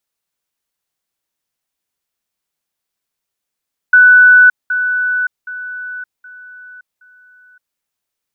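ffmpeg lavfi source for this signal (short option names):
-f lavfi -i "aevalsrc='pow(10,(-3-10*floor(t/0.77))/20)*sin(2*PI*1490*t)*clip(min(mod(t,0.77),0.57-mod(t,0.77))/0.005,0,1)':d=3.85:s=44100"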